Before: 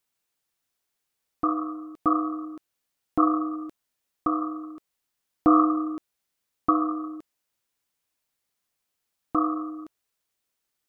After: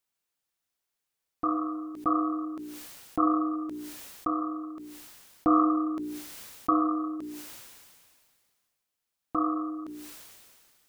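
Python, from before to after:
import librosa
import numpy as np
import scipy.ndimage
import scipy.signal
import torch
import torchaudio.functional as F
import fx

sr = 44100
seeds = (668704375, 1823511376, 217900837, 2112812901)

y = fx.hum_notches(x, sr, base_hz=60, count=7)
y = fx.sustainer(y, sr, db_per_s=29.0)
y = y * librosa.db_to_amplitude(-4.0)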